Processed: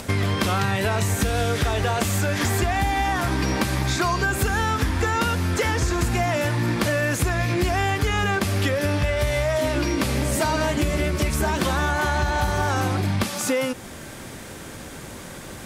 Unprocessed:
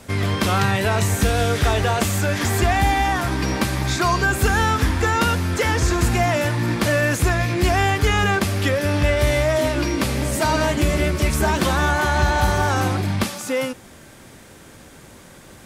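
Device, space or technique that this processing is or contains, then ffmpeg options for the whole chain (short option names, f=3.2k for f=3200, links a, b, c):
upward and downward compression: -filter_complex "[0:a]asettb=1/sr,asplit=3[a][b][c];[a]atrim=end=8.984[d];[b]atrim=start=8.98:end=9.62,asetpts=PTS-STARTPTS,afade=t=in:d=0.004:c=qsin,afade=t=out:st=0.636:d=0.004:c=qsin,equalizer=f=310:t=o:w=0.22:g=-13[e];[c]atrim=start=9.616[f];[d][e]acrossfade=d=0.004:c1=hsin:c2=qsin[g];[g][f]acrossfade=d=0.004:c1=qsin:c2=hsin,acompressor=mode=upward:threshold=-40dB:ratio=2.5,acompressor=threshold=-26dB:ratio=5,volume=6dB"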